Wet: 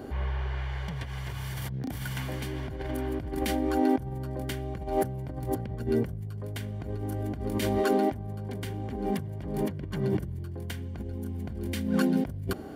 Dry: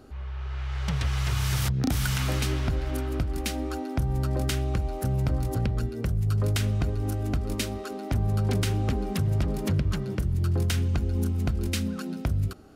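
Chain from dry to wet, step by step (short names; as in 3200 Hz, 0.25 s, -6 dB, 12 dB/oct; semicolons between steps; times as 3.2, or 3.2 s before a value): bell 6000 Hz -9 dB 1.6 oct; negative-ratio compressor -34 dBFS, ratio -1; notch comb 1300 Hz; gain +5.5 dB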